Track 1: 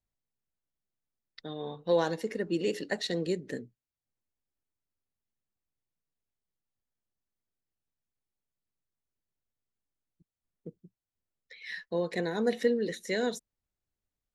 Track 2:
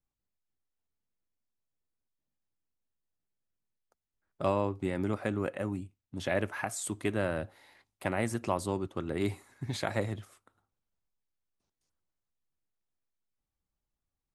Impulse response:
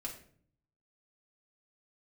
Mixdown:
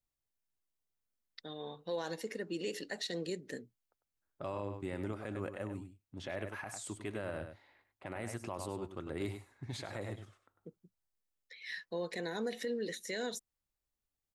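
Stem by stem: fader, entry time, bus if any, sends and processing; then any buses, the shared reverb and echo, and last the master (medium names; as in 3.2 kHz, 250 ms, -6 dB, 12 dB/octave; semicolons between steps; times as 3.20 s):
-4.5 dB, 0.00 s, no send, no echo send, tilt EQ +1.5 dB/octave
-6.0 dB, 0.00 s, no send, echo send -9.5 dB, level-controlled noise filter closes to 1.9 kHz, open at -30 dBFS; peaking EQ 190 Hz -4 dB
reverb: none
echo: delay 99 ms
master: peak limiter -28.5 dBFS, peak gain reduction 8.5 dB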